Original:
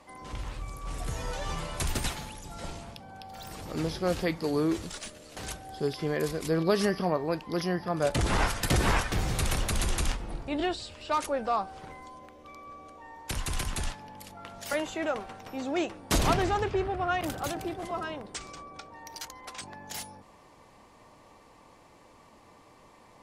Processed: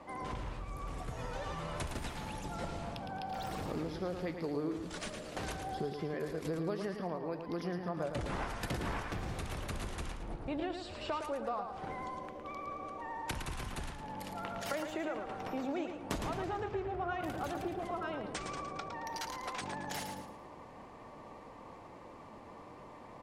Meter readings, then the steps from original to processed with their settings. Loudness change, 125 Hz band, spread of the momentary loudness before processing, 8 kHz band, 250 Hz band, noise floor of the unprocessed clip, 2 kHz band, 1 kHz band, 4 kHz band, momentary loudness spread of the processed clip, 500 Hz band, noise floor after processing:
-8.5 dB, -8.5 dB, 18 LU, -12.5 dB, -7.0 dB, -56 dBFS, -8.0 dB, -6.0 dB, -10.0 dB, 14 LU, -7.5 dB, -52 dBFS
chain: vibrato 12 Hz 42 cents; high shelf 3300 Hz -11.5 dB; compressor 6:1, threshold -41 dBFS, peak gain reduction 19 dB; low shelf 75 Hz -6 dB; feedback echo 0.111 s, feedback 38%, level -7 dB; mismatched tape noise reduction decoder only; gain +5.5 dB

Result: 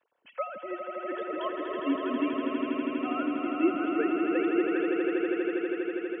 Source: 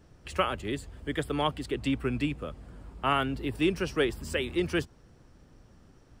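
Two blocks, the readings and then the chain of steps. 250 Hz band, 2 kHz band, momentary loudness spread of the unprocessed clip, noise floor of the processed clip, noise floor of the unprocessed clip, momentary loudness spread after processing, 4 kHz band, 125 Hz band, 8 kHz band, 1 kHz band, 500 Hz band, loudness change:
+4.5 dB, -1.0 dB, 9 LU, -55 dBFS, -58 dBFS, 9 LU, -9.5 dB, under -20 dB, under -30 dB, -1.0 dB, +3.0 dB, +1.0 dB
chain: sine-wave speech; notch comb 410 Hz; swelling echo 81 ms, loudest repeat 8, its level -6 dB; gain -2 dB

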